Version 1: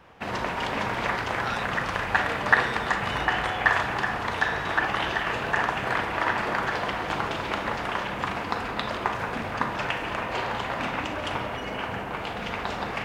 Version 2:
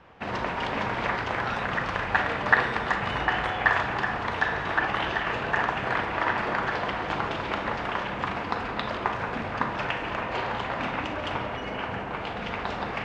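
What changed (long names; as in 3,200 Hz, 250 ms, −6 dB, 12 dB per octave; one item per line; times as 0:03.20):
speech: add spectral tilt −3 dB per octave
background: add high-frequency loss of the air 97 metres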